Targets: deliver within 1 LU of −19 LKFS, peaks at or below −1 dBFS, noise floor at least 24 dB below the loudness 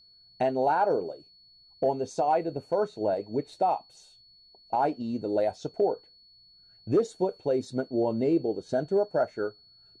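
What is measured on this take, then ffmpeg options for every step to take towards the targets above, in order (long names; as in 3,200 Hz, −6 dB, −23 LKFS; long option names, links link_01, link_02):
interfering tone 4,400 Hz; level of the tone −55 dBFS; integrated loudness −28.5 LKFS; sample peak −15.0 dBFS; target loudness −19.0 LKFS
→ -af "bandreject=frequency=4400:width=30"
-af "volume=9.5dB"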